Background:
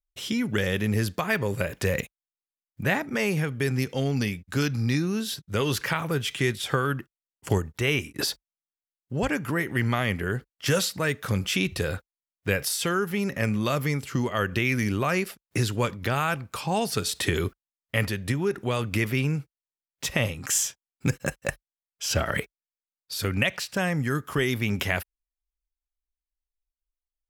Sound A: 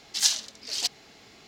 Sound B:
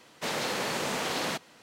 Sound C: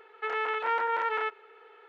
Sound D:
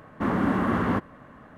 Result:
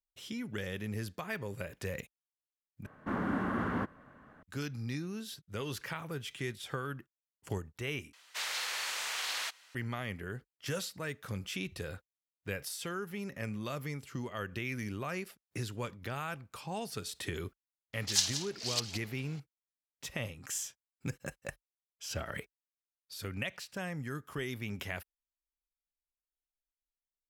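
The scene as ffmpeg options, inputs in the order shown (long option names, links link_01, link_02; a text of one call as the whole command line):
ffmpeg -i bed.wav -i cue0.wav -i cue1.wav -i cue2.wav -i cue3.wav -filter_complex "[0:a]volume=-13dB[link_01];[4:a]equalizer=frequency=1500:width_type=o:width=0.29:gain=5[link_02];[2:a]highpass=1500[link_03];[1:a]asplit=2[link_04][link_05];[link_05]adelay=174.9,volume=-8dB,highshelf=frequency=4000:gain=-3.94[link_06];[link_04][link_06]amix=inputs=2:normalize=0[link_07];[link_01]asplit=3[link_08][link_09][link_10];[link_08]atrim=end=2.864[link_11];[link_02]atrim=end=1.57,asetpts=PTS-STARTPTS,volume=-9.5dB[link_12];[link_09]atrim=start=4.426:end=8.134[link_13];[link_03]atrim=end=1.62,asetpts=PTS-STARTPTS,volume=-1.5dB[link_14];[link_10]atrim=start=9.746[link_15];[link_07]atrim=end=1.47,asetpts=PTS-STARTPTS,volume=-6dB,afade=type=in:duration=0.004:curve=hsin,afade=type=out:start_time=1.466:duration=0.004:curve=hsin,adelay=17930[link_16];[link_11][link_12]acrossfade=duration=0.004:curve1=hsin:curve2=hsin[link_17];[link_17][link_13]acrossfade=duration=0.004:curve1=hsin:curve2=hsin[link_18];[link_18][link_14]acrossfade=duration=0.004:curve1=hsin:curve2=hsin[link_19];[link_19][link_15]acrossfade=duration=0.004:curve1=hsin:curve2=hsin[link_20];[link_20][link_16]amix=inputs=2:normalize=0" out.wav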